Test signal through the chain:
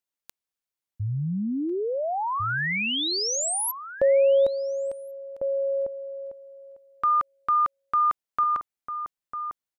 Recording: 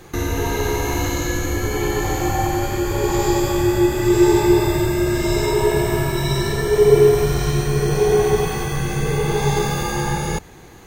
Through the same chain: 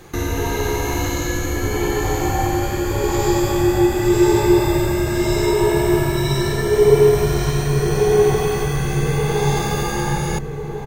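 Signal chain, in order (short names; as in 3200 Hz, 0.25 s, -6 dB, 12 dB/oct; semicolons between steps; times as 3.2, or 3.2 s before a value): outdoor echo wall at 240 m, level -7 dB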